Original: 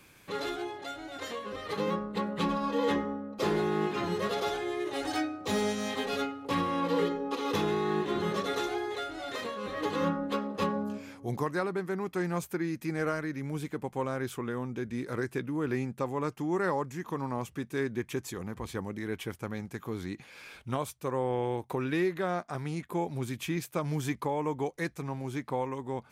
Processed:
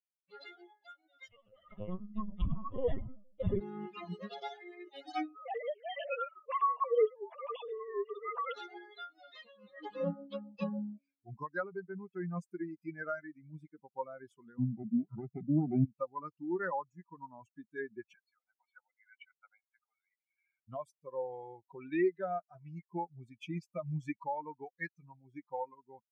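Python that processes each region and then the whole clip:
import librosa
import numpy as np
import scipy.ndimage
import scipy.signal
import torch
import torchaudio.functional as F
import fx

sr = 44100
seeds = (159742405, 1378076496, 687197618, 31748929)

y = fx.chain(x, sr, fx.low_shelf(hz=150.0, db=9.5),
    fx.echo_feedback(ms=95, feedback_pct=35, wet_db=-10.0),
    fx.lpc_vocoder(seeds[0], excitation='pitch_kept', order=10), at=(1.28, 3.61))
y = fx.chain(y, sr, fx.sine_speech(),
    fx.band_squash(depth_pct=40), at=(5.35, 8.54))
y = fx.chain(y, sr, fx.lower_of_two(delay_ms=0.85),
    fx.highpass(hz=130.0, slope=24),
    fx.tilt_eq(slope=-4.5), at=(14.58, 15.85))
y = fx.chain(y, sr, fx.bandpass_edges(low_hz=800.0, high_hz=2300.0),
    fx.comb(ms=1.4, depth=0.7), at=(18.14, 20.68))
y = fx.bin_expand(y, sr, power=3.0)
y = scipy.signal.sosfilt(scipy.signal.butter(2, 2500.0, 'lowpass', fs=sr, output='sos'), y)
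y = y * 10.0 ** (2.5 / 20.0)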